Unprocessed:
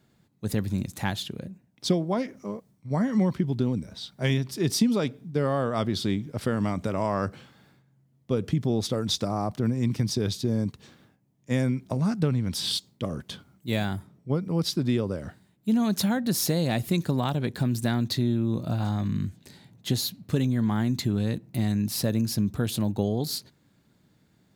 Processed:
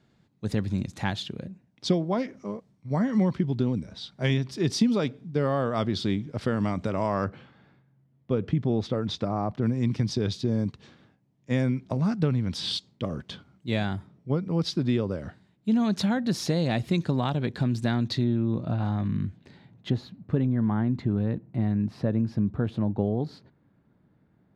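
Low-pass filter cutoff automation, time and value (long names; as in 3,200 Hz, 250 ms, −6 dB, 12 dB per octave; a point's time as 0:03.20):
5,500 Hz
from 0:07.24 2,800 Hz
from 0:09.62 4,800 Hz
from 0:18.24 2,700 Hz
from 0:19.90 1,500 Hz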